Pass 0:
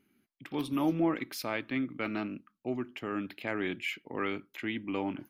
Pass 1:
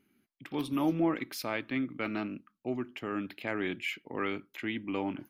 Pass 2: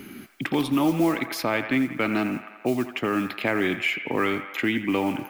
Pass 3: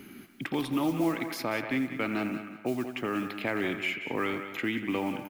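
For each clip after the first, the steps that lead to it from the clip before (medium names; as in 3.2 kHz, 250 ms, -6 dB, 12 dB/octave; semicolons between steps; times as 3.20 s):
no audible change
modulation noise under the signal 29 dB; feedback echo behind a band-pass 85 ms, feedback 54%, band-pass 1.3 kHz, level -9 dB; three bands compressed up and down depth 70%; trim +9 dB
feedback delay 188 ms, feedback 25%, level -11.5 dB; trim -6.5 dB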